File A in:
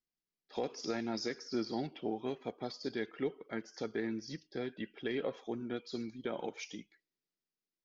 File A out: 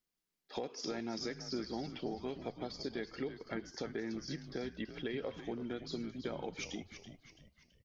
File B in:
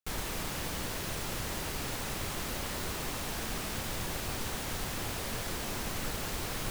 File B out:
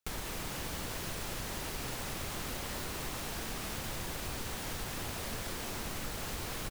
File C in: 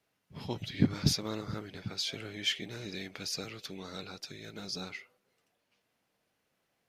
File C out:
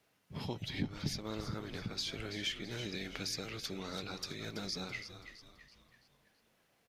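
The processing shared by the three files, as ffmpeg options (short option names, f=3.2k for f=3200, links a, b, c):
-filter_complex "[0:a]acompressor=threshold=-43dB:ratio=3,asplit=6[a][b][c][d][e][f];[b]adelay=331,afreqshift=-81,volume=-10.5dB[g];[c]adelay=662,afreqshift=-162,volume=-17.6dB[h];[d]adelay=993,afreqshift=-243,volume=-24.8dB[i];[e]adelay=1324,afreqshift=-324,volume=-31.9dB[j];[f]adelay=1655,afreqshift=-405,volume=-39dB[k];[a][g][h][i][j][k]amix=inputs=6:normalize=0,volume=4.5dB"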